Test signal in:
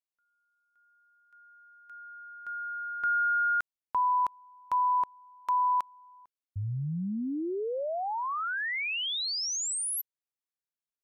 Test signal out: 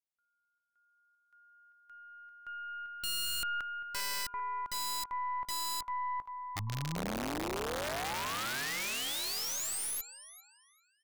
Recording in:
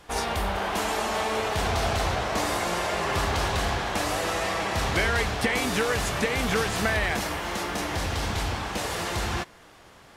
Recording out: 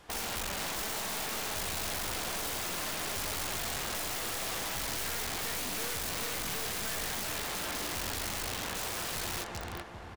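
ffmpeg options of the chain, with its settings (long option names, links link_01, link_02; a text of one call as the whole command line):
ffmpeg -i in.wav -filter_complex "[0:a]asplit=2[link_01][link_02];[link_02]adelay=394,lowpass=frequency=3100:poles=1,volume=-7dB,asplit=2[link_03][link_04];[link_04]adelay=394,lowpass=frequency=3100:poles=1,volume=0.51,asplit=2[link_05][link_06];[link_06]adelay=394,lowpass=frequency=3100:poles=1,volume=0.51,asplit=2[link_07][link_08];[link_08]adelay=394,lowpass=frequency=3100:poles=1,volume=0.51,asplit=2[link_09][link_10];[link_10]adelay=394,lowpass=frequency=3100:poles=1,volume=0.51,asplit=2[link_11][link_12];[link_12]adelay=394,lowpass=frequency=3100:poles=1,volume=0.51[link_13];[link_01][link_03][link_05][link_07][link_09][link_11][link_13]amix=inputs=7:normalize=0,aeval=exprs='0.355*(cos(1*acos(clip(val(0)/0.355,-1,1)))-cos(1*PI/2))+0.00282*(cos(3*acos(clip(val(0)/0.355,-1,1)))-cos(3*PI/2))+0.00447*(cos(5*acos(clip(val(0)/0.355,-1,1)))-cos(5*PI/2))+0.0562*(cos(6*acos(clip(val(0)/0.355,-1,1)))-cos(6*PI/2))+0.01*(cos(7*acos(clip(val(0)/0.355,-1,1)))-cos(7*PI/2))':channel_layout=same,aeval=exprs='(mod(18.8*val(0)+1,2)-1)/18.8':channel_layout=same,volume=-3.5dB" out.wav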